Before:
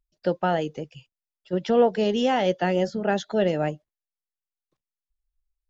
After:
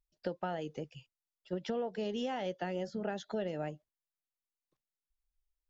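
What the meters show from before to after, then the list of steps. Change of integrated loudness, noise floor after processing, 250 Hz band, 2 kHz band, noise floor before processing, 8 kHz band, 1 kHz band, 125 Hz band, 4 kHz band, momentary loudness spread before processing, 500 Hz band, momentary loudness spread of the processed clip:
−14.0 dB, below −85 dBFS, −13.0 dB, −14.0 dB, below −85 dBFS, can't be measured, −14.5 dB, −13.0 dB, −13.0 dB, 12 LU, −14.5 dB, 9 LU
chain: downward compressor, threshold −27 dBFS, peak gain reduction 13 dB
level −6 dB

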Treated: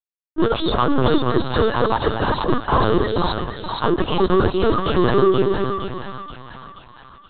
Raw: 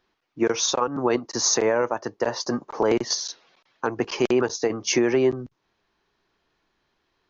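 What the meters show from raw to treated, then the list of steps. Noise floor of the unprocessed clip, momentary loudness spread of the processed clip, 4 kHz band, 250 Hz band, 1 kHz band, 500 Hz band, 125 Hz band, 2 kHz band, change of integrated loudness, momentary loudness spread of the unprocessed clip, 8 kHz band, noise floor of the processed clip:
−74 dBFS, 15 LU, +1.5 dB, +6.0 dB, +9.5 dB, +4.5 dB, +14.0 dB, +4.0 dB, +4.0 dB, 10 LU, can't be measured, −55 dBFS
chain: high-pass filter 400 Hz 12 dB per octave
low-pass that shuts in the quiet parts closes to 1,400 Hz, open at −20.5 dBFS
noise gate with hold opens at −48 dBFS
reverb reduction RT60 1.8 s
reversed playback
upward compression, threshold −38 dBFS
reversed playback
fuzz pedal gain 44 dB, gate −53 dBFS
phaser with its sweep stopped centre 600 Hz, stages 6
on a send: echo with a time of its own for lows and highs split 750 Hz, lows 234 ms, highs 475 ms, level −4 dB
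on the sum: linear-prediction vocoder at 8 kHz pitch kept

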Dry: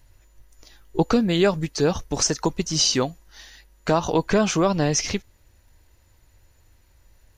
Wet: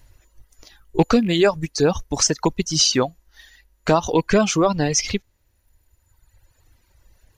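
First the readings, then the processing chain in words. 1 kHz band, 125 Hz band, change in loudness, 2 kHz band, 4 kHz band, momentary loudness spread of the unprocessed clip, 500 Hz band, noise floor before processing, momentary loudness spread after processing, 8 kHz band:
+2.5 dB, +1.0 dB, +2.5 dB, +3.0 dB, +3.0 dB, 9 LU, +2.5 dB, −58 dBFS, 10 LU, +3.0 dB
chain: loose part that buzzes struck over −23 dBFS, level −27 dBFS
reverb reduction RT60 1.7 s
level +3.5 dB

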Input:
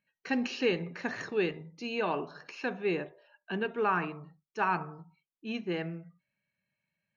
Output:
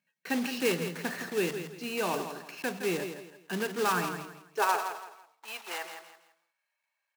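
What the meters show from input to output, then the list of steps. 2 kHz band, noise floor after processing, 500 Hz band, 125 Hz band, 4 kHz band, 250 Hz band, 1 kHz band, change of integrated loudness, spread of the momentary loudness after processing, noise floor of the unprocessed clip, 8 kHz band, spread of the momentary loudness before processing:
+1.0 dB, −84 dBFS, 0.0 dB, −1.0 dB, +4.0 dB, −0.5 dB, +1.5 dB, +0.5 dB, 14 LU, below −85 dBFS, can't be measured, 15 LU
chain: one scale factor per block 3 bits
high-pass filter sweep 160 Hz → 880 Hz, 0:04.14–0:04.96
parametric band 100 Hz −10 dB 2.2 octaves
on a send: repeating echo 165 ms, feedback 30%, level −9 dB

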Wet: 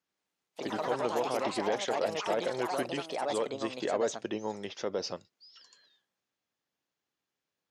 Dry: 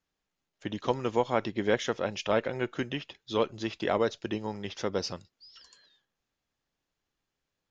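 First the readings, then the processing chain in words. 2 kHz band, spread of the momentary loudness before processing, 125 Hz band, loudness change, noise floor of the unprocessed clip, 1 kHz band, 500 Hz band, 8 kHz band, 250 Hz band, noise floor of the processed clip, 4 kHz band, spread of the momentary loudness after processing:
−3.0 dB, 9 LU, −9.0 dB, −2.0 dB, below −85 dBFS, +0.5 dB, −1.5 dB, can't be measured, −4.0 dB, below −85 dBFS, −1.5 dB, 7 LU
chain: brickwall limiter −21 dBFS, peak gain reduction 9.5 dB
Bessel high-pass filter 180 Hz, order 2
dynamic equaliser 560 Hz, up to +6 dB, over −47 dBFS, Q 1.1
delay with pitch and tempo change per echo 88 ms, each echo +4 semitones, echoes 3
level −2.5 dB

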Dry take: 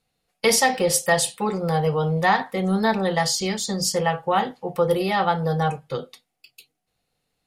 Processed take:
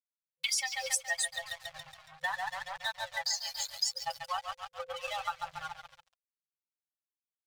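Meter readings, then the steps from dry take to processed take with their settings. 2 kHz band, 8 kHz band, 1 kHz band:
−10.0 dB, −9.5 dB, −15.5 dB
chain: spectral dynamics exaggerated over time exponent 3
meter weighting curve ITU-R 468
bucket-brigade delay 139 ms, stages 4,096, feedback 68%, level −5.5 dB
dead-zone distortion −36 dBFS
brick-wall band-stop 160–510 Hz
downward compressor 4 to 1, threshold −28 dBFS, peak gain reduction 15 dB
phase shifter 0.73 Hz, delay 3 ms, feedback 35%
level −3.5 dB

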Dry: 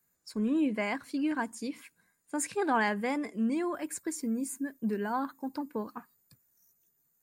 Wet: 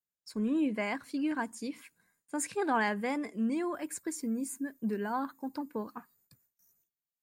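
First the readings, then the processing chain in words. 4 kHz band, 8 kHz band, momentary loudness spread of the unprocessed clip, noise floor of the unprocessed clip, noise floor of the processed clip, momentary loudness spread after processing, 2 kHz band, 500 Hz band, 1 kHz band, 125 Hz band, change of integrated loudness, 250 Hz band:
−1.5 dB, −1.5 dB, 11 LU, −75 dBFS, below −85 dBFS, 11 LU, −1.5 dB, −1.5 dB, −1.5 dB, can't be measured, −1.5 dB, −1.5 dB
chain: noise gate with hold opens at −59 dBFS
level −1.5 dB

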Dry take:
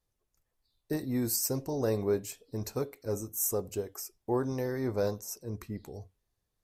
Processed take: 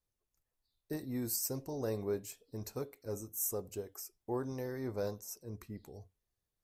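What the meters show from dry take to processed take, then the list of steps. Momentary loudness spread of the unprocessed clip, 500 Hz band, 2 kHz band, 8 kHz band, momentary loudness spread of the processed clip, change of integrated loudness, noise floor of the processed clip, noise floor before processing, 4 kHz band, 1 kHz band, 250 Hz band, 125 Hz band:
11 LU, −7.0 dB, −7.0 dB, −5.5 dB, 11 LU, −6.5 dB, below −85 dBFS, −82 dBFS, −6.5 dB, −7.0 dB, −7.0 dB, −7.0 dB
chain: high-shelf EQ 9,100 Hz +3.5 dB
level −7 dB

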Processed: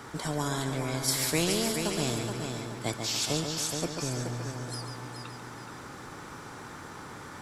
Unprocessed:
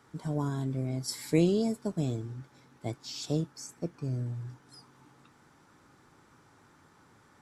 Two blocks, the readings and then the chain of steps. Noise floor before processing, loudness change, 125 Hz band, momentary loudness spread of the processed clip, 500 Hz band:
−62 dBFS, +2.0 dB, −1.0 dB, 17 LU, +1.0 dB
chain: echo machine with several playback heads 141 ms, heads first and third, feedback 42%, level −11 dB
every bin compressed towards the loudest bin 2 to 1

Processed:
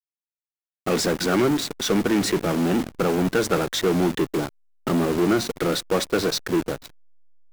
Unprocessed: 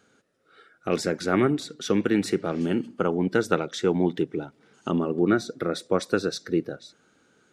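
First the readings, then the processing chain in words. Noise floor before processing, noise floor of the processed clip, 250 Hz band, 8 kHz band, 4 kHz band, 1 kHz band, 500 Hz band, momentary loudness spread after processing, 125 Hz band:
−64 dBFS, below −85 dBFS, +2.5 dB, +9.0 dB, +8.5 dB, +3.5 dB, +2.5 dB, 5 LU, +3.0 dB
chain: hold until the input has moved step −38.5 dBFS
in parallel at −6 dB: fuzz pedal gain 39 dB, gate −41 dBFS
on the sum: level −4 dB

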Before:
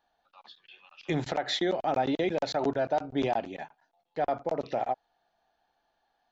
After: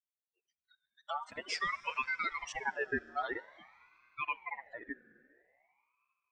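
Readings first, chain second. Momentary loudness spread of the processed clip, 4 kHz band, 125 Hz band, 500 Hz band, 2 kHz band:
13 LU, −9.0 dB, −21.5 dB, −16.0 dB, +4.0 dB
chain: spectral dynamics exaggerated over time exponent 3
four-comb reverb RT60 3.1 s, combs from 33 ms, DRR 17.5 dB
ring modulator whose carrier an LFO sweeps 1,400 Hz, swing 30%, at 0.49 Hz

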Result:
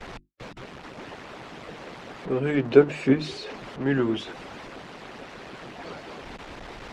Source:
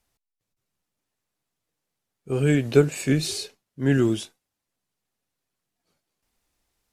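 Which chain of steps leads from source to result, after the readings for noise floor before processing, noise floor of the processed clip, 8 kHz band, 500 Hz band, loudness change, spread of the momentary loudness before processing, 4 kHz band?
−84 dBFS, −44 dBFS, below −10 dB, +1.5 dB, −1.0 dB, 13 LU, −3.0 dB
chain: converter with a step at zero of −28 dBFS
high-pass filter 51 Hz 12 dB per octave
mains-hum notches 50/100/150/200/250/300/350 Hz
noise gate with hold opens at −30 dBFS
low-pass filter 3,000 Hz 12 dB per octave
parametric band 79 Hz −14.5 dB 1.7 octaves
harmonic and percussive parts rebalanced harmonic −10 dB
spectral tilt −2 dB per octave
level +3.5 dB

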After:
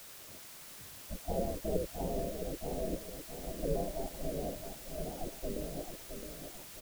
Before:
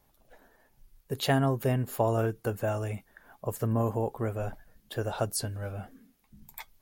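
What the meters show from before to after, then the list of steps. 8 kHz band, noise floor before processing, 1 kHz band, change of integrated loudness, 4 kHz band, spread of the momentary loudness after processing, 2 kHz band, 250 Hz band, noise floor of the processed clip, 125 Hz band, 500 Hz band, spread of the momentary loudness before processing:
−5.0 dB, −68 dBFS, −10.0 dB, −9.0 dB, −8.0 dB, 11 LU, −13.5 dB, −7.5 dB, −51 dBFS, −13.5 dB, −6.0 dB, 15 LU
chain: Chebyshev low-pass filter 560 Hz, order 5
gate on every frequency bin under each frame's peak −20 dB weak
low-shelf EQ 150 Hz +5 dB
background noise white −66 dBFS
repeating echo 665 ms, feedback 41%, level −7.5 dB
level +15 dB

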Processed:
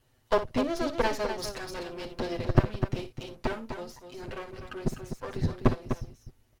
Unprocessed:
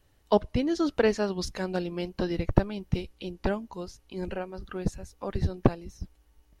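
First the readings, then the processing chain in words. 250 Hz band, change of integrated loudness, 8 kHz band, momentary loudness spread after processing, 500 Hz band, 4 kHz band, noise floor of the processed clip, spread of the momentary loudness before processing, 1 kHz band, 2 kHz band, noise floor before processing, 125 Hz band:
−3.5 dB, −2.0 dB, +0.5 dB, 14 LU, −2.5 dB, 0.0 dB, −67 dBFS, 14 LU, +1.0 dB, +0.5 dB, −64 dBFS, 0.0 dB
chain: lower of the sound and its delayed copy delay 7.9 ms
loudspeakers that aren't time-aligned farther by 20 metres −12 dB, 86 metres −8 dB

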